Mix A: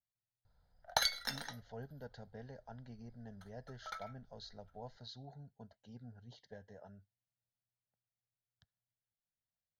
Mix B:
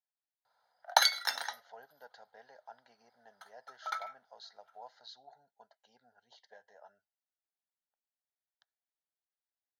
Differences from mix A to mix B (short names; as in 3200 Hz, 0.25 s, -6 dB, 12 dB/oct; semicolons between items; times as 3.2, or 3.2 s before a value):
background +6.0 dB; master: add resonant high-pass 840 Hz, resonance Q 1.6